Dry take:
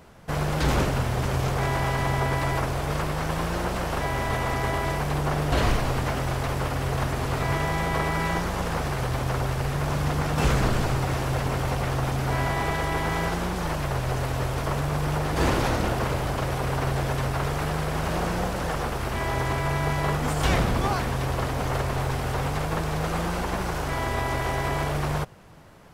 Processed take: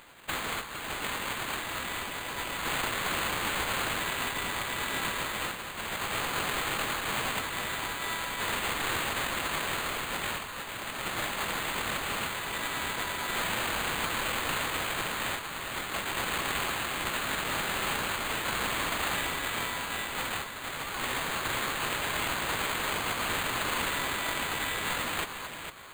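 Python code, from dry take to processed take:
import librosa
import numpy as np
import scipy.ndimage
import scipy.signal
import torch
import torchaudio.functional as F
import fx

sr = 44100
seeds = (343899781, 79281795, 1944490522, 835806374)

p1 = fx.envelope_flatten(x, sr, power=0.3)
p2 = scipy.signal.sosfilt(scipy.signal.cheby1(5, 1.0, 1000.0, 'highpass', fs=sr, output='sos'), p1)
p3 = fx.over_compress(p2, sr, threshold_db=-29.0, ratio=-0.5)
p4 = p3 + fx.echo_alternate(p3, sr, ms=228, hz=1400.0, feedback_pct=55, wet_db=-3.0, dry=0)
p5 = np.repeat(p4[::8], 8)[:len(p4)]
y = p5 * librosa.db_to_amplitude(-4.0)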